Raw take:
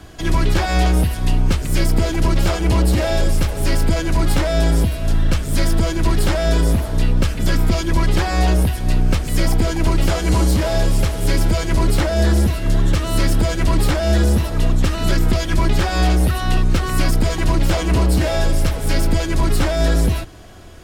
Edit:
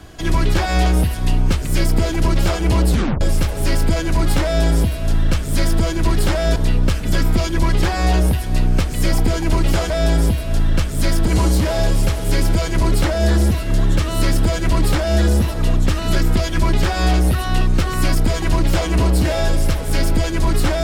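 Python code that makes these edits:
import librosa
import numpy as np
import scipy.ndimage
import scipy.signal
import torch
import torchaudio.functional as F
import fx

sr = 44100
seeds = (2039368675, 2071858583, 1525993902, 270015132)

y = fx.edit(x, sr, fx.tape_stop(start_s=2.9, length_s=0.31),
    fx.duplicate(start_s=4.44, length_s=1.38, to_s=10.24),
    fx.cut(start_s=6.56, length_s=0.34), tone=tone)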